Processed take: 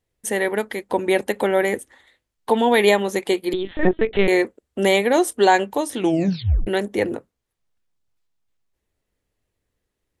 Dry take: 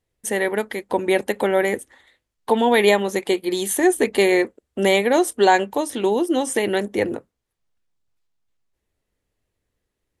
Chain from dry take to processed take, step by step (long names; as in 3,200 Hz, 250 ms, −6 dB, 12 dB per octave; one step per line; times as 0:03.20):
0:03.53–0:04.28: linear-prediction vocoder at 8 kHz pitch kept
0:05.99: tape stop 0.68 s